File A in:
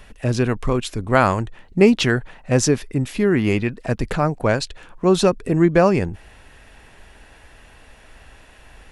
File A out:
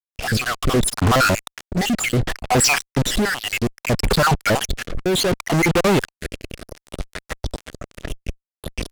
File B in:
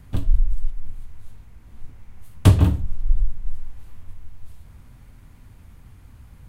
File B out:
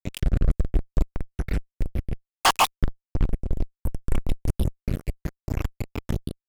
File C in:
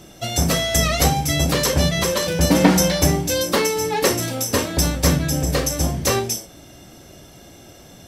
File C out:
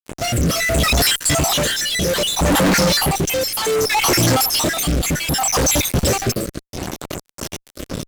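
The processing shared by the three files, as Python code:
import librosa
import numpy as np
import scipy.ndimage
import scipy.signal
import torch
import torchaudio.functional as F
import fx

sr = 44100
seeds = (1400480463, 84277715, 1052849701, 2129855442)

p1 = fx.spec_dropout(x, sr, seeds[0], share_pct=67)
p2 = fx.over_compress(p1, sr, threshold_db=-27.0, ratio=-1.0)
p3 = p1 + F.gain(torch.from_numpy(p2), 0.0).numpy()
p4 = fx.fuzz(p3, sr, gain_db=38.0, gate_db=-34.0)
y = fx.rotary(p4, sr, hz=0.65)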